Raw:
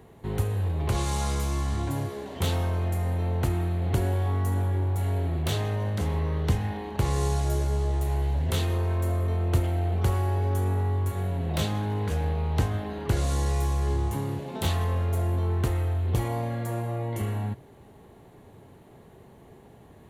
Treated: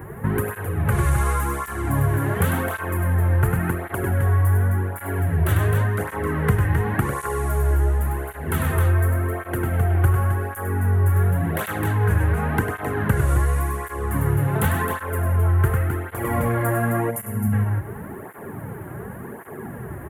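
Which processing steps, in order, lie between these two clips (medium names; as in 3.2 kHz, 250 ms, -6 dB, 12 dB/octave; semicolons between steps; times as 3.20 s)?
FFT filter 250 Hz 0 dB, 770 Hz -3 dB, 1.6 kHz +8 dB, 4.1 kHz -24 dB, 5.9 kHz -18 dB, 11 kHz +5 dB; on a send: loudspeakers at several distances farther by 34 m -5 dB, 90 m -6 dB; on the sum: time-frequency box 17.11–17.52 s, 250–4900 Hz -12 dB; in parallel at +2 dB: gain riding within 5 dB 0.5 s; on the sum: dynamic bell 3.9 kHz, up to +6 dB, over -45 dBFS, Q 0.83; compression 2.5:1, threshold -26 dBFS, peak gain reduction 10.5 dB; cancelling through-zero flanger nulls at 0.9 Hz, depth 4.8 ms; trim +8 dB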